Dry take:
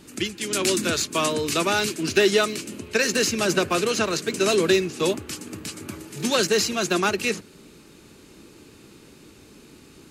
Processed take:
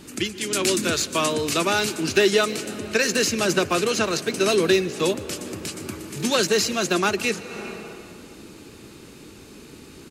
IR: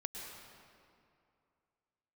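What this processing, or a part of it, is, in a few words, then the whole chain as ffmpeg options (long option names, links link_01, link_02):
ducked reverb: -filter_complex "[0:a]asettb=1/sr,asplit=3[link_01][link_02][link_03];[link_01]atrim=end=4.174[link_04];[link_02]atrim=start=4.17:end=4.85,asetpts=PTS-STARTPTS,afade=type=in:duration=0.004:curve=qsin,afade=type=out:start_time=0.676:duration=0.004:curve=qsin,bandreject=frequency=7200:width=8.2[link_05];[link_03]atrim=start=4.846[link_06];[link_04][link_05]acrossfade=duration=0.004:curve1=hsin:curve2=qsin[link_07];[link_07][link_06]acrossfade=duration=0.004:curve1=qsin:curve2=hsin,asplit=6[link_08][link_09][link_10][link_11][link_12][link_13];[link_09]adelay=152,afreqshift=50,volume=-23dB[link_14];[link_10]adelay=304,afreqshift=100,volume=-27dB[link_15];[link_11]adelay=456,afreqshift=150,volume=-31dB[link_16];[link_12]adelay=608,afreqshift=200,volume=-35dB[link_17];[link_13]adelay=760,afreqshift=250,volume=-39.1dB[link_18];[link_08][link_14][link_15][link_16][link_17][link_18]amix=inputs=6:normalize=0,asplit=3[link_19][link_20][link_21];[1:a]atrim=start_sample=2205[link_22];[link_20][link_22]afir=irnorm=-1:irlink=0[link_23];[link_21]apad=whole_len=455624[link_24];[link_23][link_24]sidechaincompress=threshold=-40dB:ratio=8:attack=46:release=223,volume=-1dB[link_25];[link_19][link_25]amix=inputs=2:normalize=0"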